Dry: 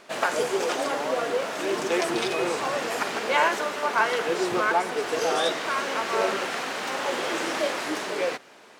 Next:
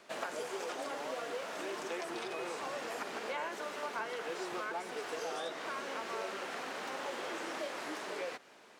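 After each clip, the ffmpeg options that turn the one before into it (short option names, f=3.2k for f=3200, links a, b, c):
-filter_complex "[0:a]acrossover=split=180|590|1800[a][b][c][d];[a]acompressor=threshold=-60dB:ratio=4[e];[b]acompressor=threshold=-36dB:ratio=4[f];[c]acompressor=threshold=-34dB:ratio=4[g];[d]acompressor=threshold=-39dB:ratio=4[h];[e][f][g][h]amix=inputs=4:normalize=0,volume=-8dB"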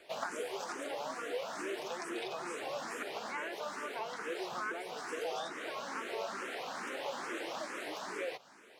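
-filter_complex "[0:a]asplit=2[a][b];[b]afreqshift=2.3[c];[a][c]amix=inputs=2:normalize=1,volume=3dB"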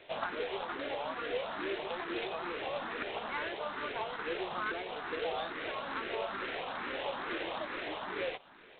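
-af "volume=2dB" -ar 8000 -c:a adpcm_g726 -b:a 16k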